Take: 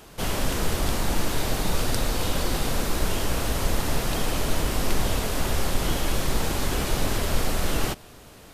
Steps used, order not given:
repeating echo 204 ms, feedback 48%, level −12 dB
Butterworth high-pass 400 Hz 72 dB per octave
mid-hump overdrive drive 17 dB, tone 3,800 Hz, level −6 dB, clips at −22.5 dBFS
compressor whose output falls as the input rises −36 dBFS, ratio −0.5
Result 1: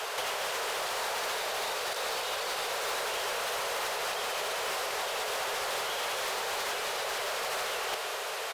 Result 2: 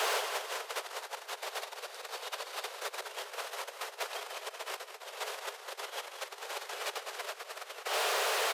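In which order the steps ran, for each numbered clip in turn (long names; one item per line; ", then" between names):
Butterworth high-pass, then compressor whose output falls as the input rises, then repeating echo, then mid-hump overdrive
compressor whose output falls as the input rises, then repeating echo, then mid-hump overdrive, then Butterworth high-pass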